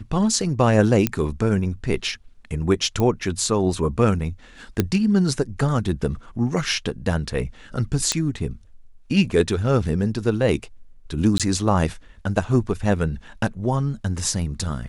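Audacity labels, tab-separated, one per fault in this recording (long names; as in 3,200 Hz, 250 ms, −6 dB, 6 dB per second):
1.070000	1.070000	click −4 dBFS
3.000000	3.000000	click −11 dBFS
4.800000	4.800000	click −5 dBFS
8.120000	8.120000	click −5 dBFS
11.380000	11.400000	drop-out 17 ms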